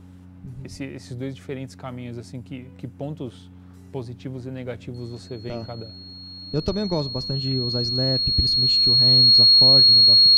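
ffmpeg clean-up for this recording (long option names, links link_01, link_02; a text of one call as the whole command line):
ffmpeg -i in.wav -af "bandreject=frequency=90.9:width_type=h:width=4,bandreject=frequency=181.8:width_type=h:width=4,bandreject=frequency=272.7:width_type=h:width=4,bandreject=frequency=4300:width=30" out.wav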